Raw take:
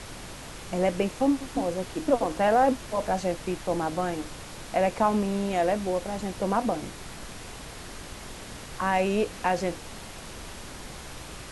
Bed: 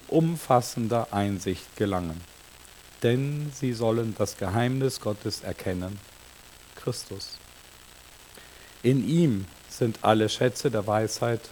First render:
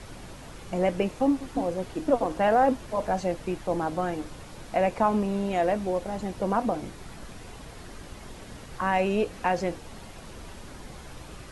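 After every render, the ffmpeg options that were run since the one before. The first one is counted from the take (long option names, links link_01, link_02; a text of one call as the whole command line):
ffmpeg -i in.wav -af "afftdn=noise_reduction=7:noise_floor=-42" out.wav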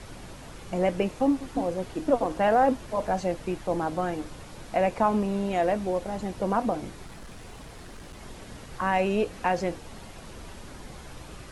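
ffmpeg -i in.wav -filter_complex "[0:a]asettb=1/sr,asplit=3[link_01][link_02][link_03];[link_01]atrim=end=7.064[link_04];[link_02]atrim=start=7.06:end=8.19,asetpts=PTS-STARTPTS,afade=type=in:duration=0.004:curve=qsin,afade=type=out:start_time=1.126:duration=0.004:curve=qsin,asoftclip=type=hard:threshold=-38.5dB[link_05];[link_03]atrim=start=8.186[link_06];[link_04][link_05]acrossfade=duration=0.004:curve1=hsin:curve2=qsin[link_07];[link_07][link_06]acrossfade=duration=0.004:curve1=qsin:curve2=hsin" out.wav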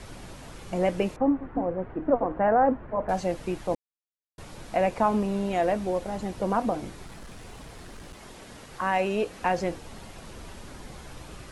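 ffmpeg -i in.wav -filter_complex "[0:a]asettb=1/sr,asplit=3[link_01][link_02][link_03];[link_01]atrim=end=1.164[link_04];[link_02]atrim=start=1.16:end=3.09,asetpts=PTS-STARTPTS,afade=type=in:duration=0.004:curve=qsin,afade=type=out:start_time=1.926:duration=0.004:curve=qsin,lowpass=frequency=1800:width=0.5412,lowpass=frequency=1800:width=1.3066[link_05];[link_03]atrim=start=3.086[link_06];[link_04][link_05]acrossfade=duration=0.004:curve1=hsin:curve2=qsin[link_07];[link_07][link_06]acrossfade=duration=0.004:curve1=qsin:curve2=hsin,asettb=1/sr,asplit=3[link_08][link_09][link_10];[link_08]atrim=end=8.134[link_11];[link_09]atrim=start=8.13:end=9.42,asetpts=PTS-STARTPTS,afade=type=in:duration=0.004:curve=qsin,afade=type=out:start_time=1.286:duration=0.004:curve=qsin,lowshelf=frequency=160:gain=-8.5[link_12];[link_10]atrim=start=9.416[link_13];[link_11][link_12]acrossfade=duration=0.004:curve1=hsin:curve2=qsin[link_14];[link_14][link_13]acrossfade=duration=0.004:curve1=qsin:curve2=hsin,asplit=3[link_15][link_16][link_17];[link_15]atrim=end=3.75,asetpts=PTS-STARTPTS,afade=type=out:start_time=3.746:duration=0.004:curve=hsin[link_18];[link_16]atrim=start=3.75:end=4.38,asetpts=PTS-STARTPTS,volume=0[link_19];[link_17]atrim=start=4.38,asetpts=PTS-STARTPTS,afade=type=in:duration=0.004:curve=hsin[link_20];[link_18][link_19][link_20]concat=n=3:v=0:a=1" out.wav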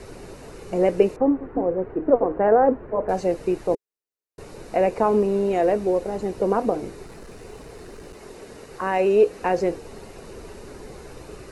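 ffmpeg -i in.wav -af "equalizer=frequency=420:width=2.3:gain=13,bandreject=frequency=3300:width=6.6" out.wav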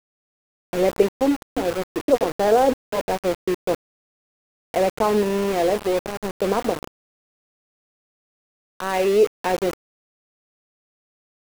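ffmpeg -i in.wav -af "aeval=exprs='val(0)*gte(abs(val(0)),0.0596)':channel_layout=same" out.wav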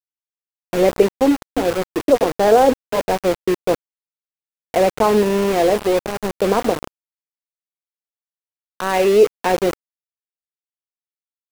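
ffmpeg -i in.wav -af "volume=4.5dB,alimiter=limit=-2dB:level=0:latency=1" out.wav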